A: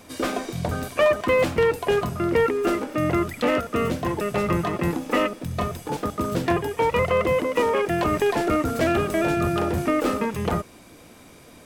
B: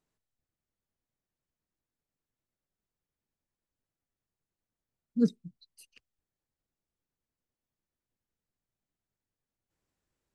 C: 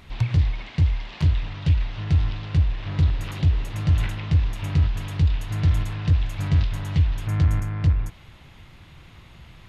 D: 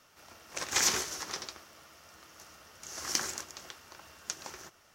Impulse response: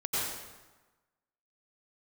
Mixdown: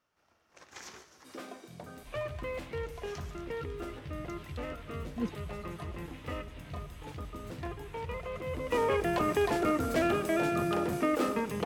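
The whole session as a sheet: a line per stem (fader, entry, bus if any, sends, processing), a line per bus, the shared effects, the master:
8.42 s -19 dB -> 8.81 s -7 dB, 1.15 s, send -23.5 dB, high-pass 140 Hz
-9.0 dB, 0.00 s, no send, none
-16.5 dB, 1.95 s, send -8.5 dB, peaking EQ 2.2 kHz +5.5 dB 2 oct; compression, threshold -27 dBFS, peak gain reduction 12.5 dB; chorus voices 6, 0.26 Hz, delay 15 ms, depth 1.7 ms
-15.0 dB, 0.00 s, no send, treble shelf 4.1 kHz -12 dB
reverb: on, RT60 1.2 s, pre-delay 83 ms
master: none

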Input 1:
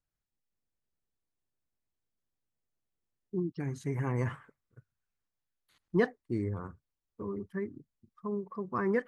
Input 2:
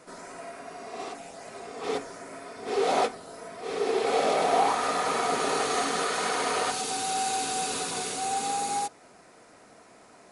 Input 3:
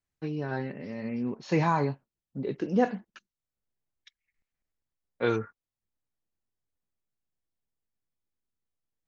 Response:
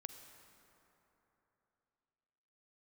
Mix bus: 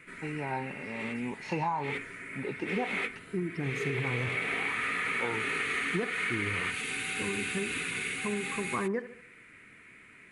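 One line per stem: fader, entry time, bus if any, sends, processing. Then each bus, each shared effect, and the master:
+3.0 dB, 0.00 s, no send, echo send -16 dB, none
+3.0 dB, 0.00 s, no send, no echo send, FFT filter 120 Hz 0 dB, 240 Hz -6 dB, 400 Hz -9 dB, 720 Hz -25 dB, 2.2 kHz +10 dB, 5.3 kHz -21 dB, 8.6 kHz -10 dB
-4.5 dB, 0.00 s, no send, no echo send, small resonant body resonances 880/2700 Hz, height 17 dB, ringing for 30 ms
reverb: none
echo: feedback delay 72 ms, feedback 40%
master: compression 6:1, threshold -28 dBFS, peak gain reduction 10.5 dB

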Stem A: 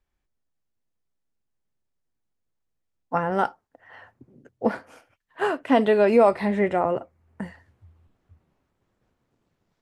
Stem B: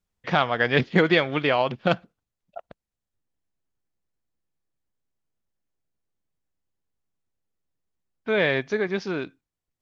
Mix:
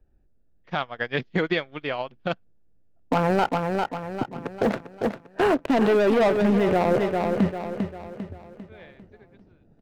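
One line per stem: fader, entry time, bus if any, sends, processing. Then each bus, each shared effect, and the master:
+1.5 dB, 0.00 s, no send, echo send -11 dB, local Wiener filter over 41 samples; waveshaping leveller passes 3; three bands compressed up and down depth 70%
+1.5 dB, 0.40 s, no send, no echo send, upward expansion 2.5:1, over -33 dBFS; auto duck -19 dB, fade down 0.80 s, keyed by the first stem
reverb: none
echo: feedback delay 398 ms, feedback 44%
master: peak limiter -12 dBFS, peak gain reduction 10.5 dB

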